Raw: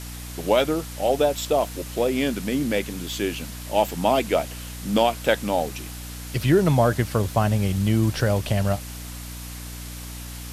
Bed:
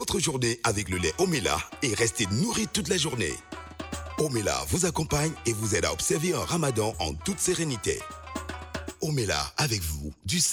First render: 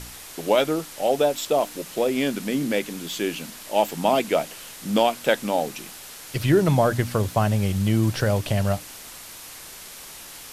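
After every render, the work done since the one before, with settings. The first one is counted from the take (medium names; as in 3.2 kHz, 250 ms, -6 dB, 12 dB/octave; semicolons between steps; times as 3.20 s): de-hum 60 Hz, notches 5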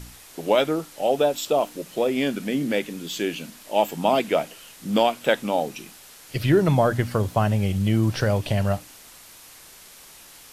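noise print and reduce 6 dB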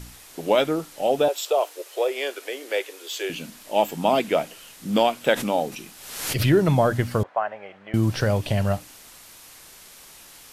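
1.28–3.30 s: steep high-pass 380 Hz 48 dB/octave; 5.27–6.53 s: swell ahead of each attack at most 58 dB/s; 7.23–7.94 s: Chebyshev band-pass 640–1800 Hz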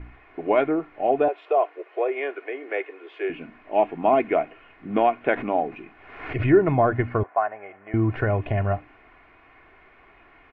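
Chebyshev low-pass 2.3 kHz, order 4; comb 2.8 ms, depth 54%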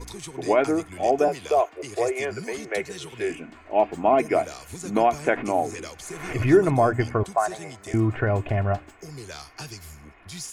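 add bed -12 dB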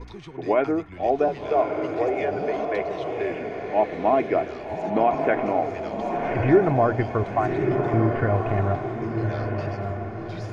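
distance through air 280 m; echo that smears into a reverb 1169 ms, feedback 42%, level -4 dB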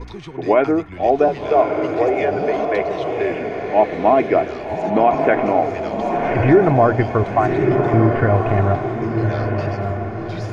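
trim +6.5 dB; peak limiter -3 dBFS, peak gain reduction 3 dB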